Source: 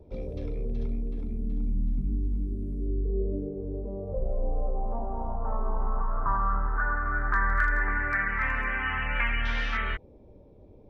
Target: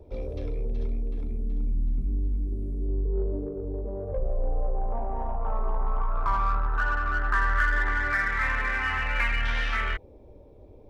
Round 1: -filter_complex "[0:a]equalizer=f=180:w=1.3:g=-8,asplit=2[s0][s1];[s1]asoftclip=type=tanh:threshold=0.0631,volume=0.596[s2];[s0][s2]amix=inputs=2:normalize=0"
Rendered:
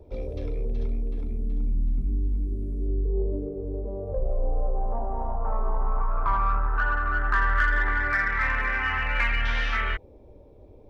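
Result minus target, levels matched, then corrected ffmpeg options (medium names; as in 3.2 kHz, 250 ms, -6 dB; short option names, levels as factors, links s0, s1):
saturation: distortion -7 dB
-filter_complex "[0:a]equalizer=f=180:w=1.3:g=-8,asplit=2[s0][s1];[s1]asoftclip=type=tanh:threshold=0.0237,volume=0.596[s2];[s0][s2]amix=inputs=2:normalize=0"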